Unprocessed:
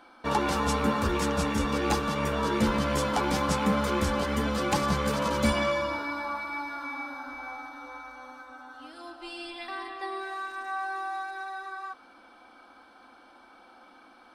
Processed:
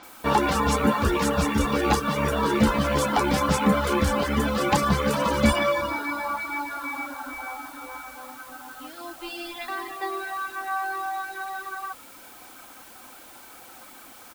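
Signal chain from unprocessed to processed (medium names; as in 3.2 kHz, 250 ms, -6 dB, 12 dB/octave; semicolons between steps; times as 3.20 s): reverb removal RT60 0.67 s; added noise white -54 dBFS; bands offset in time lows, highs 30 ms, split 5.4 kHz; trim +6 dB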